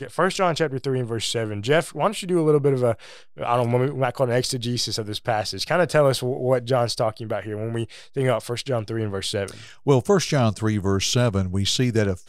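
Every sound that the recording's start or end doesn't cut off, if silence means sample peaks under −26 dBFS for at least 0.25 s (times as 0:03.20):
0:03.40–0:07.84
0:08.17–0:09.51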